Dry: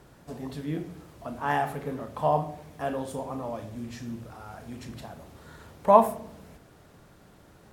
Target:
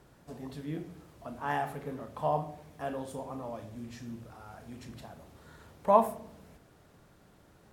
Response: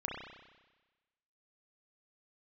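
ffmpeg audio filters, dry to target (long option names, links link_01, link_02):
-af "volume=-5.5dB"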